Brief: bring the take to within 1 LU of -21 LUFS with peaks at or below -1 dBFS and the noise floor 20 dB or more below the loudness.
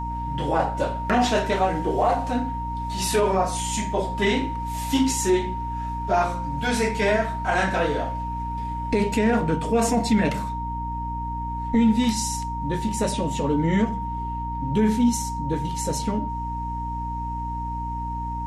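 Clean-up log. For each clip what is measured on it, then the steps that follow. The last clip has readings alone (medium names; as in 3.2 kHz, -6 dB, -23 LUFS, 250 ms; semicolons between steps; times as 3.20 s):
hum 60 Hz; highest harmonic 300 Hz; hum level -29 dBFS; steady tone 930 Hz; tone level -29 dBFS; loudness -24.5 LUFS; peak level -8.5 dBFS; loudness target -21.0 LUFS
-> de-hum 60 Hz, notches 5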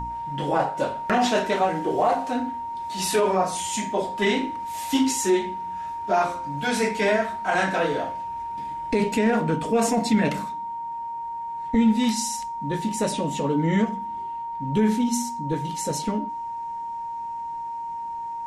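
hum not found; steady tone 930 Hz; tone level -29 dBFS
-> band-stop 930 Hz, Q 30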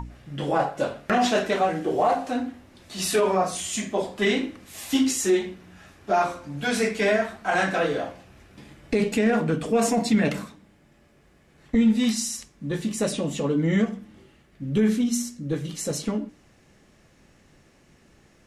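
steady tone not found; loudness -24.5 LUFS; peak level -10.0 dBFS; loudness target -21.0 LUFS
-> trim +3.5 dB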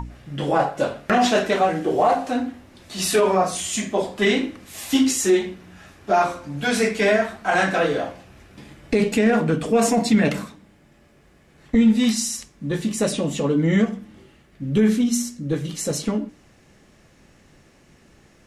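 loudness -21.0 LUFS; peak level -6.5 dBFS; noise floor -55 dBFS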